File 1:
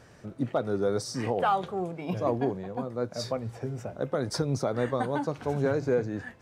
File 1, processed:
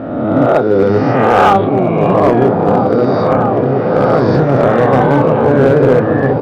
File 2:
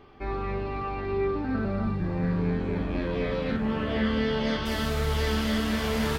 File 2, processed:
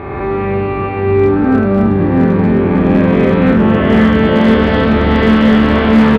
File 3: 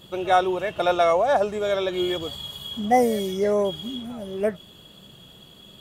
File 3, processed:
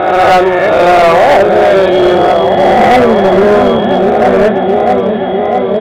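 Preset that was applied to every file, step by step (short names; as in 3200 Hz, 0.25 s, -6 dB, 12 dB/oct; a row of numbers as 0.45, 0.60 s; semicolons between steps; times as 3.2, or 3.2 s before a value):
spectral swells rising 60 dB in 1.54 s; HPF 78 Hz 12 dB/oct; repeats that get brighter 0.654 s, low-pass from 400 Hz, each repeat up 1 oct, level -3 dB; companded quantiser 6-bit; Bessel low-pass 2100 Hz, order 6; doubler 31 ms -8 dB; hard clip -17 dBFS; normalise peaks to -3 dBFS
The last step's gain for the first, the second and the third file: +14.0, +14.0, +14.0 dB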